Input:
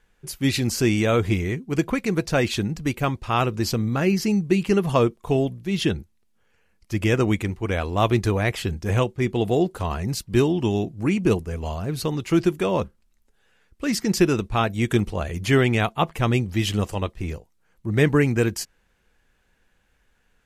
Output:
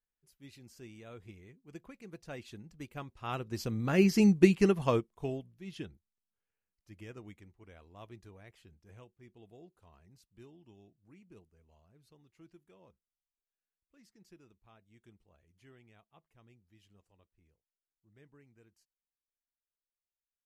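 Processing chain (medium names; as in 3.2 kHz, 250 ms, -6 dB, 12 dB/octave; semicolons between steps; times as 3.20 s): Doppler pass-by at 4.27 s, 7 m/s, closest 2.6 m; upward expansion 1.5:1, over -39 dBFS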